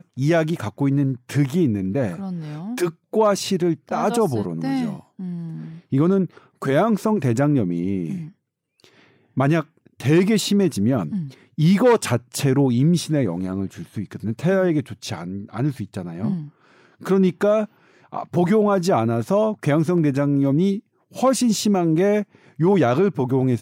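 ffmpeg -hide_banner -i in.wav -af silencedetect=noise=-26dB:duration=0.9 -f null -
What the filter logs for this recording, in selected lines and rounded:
silence_start: 8.22
silence_end: 9.37 | silence_duration: 1.15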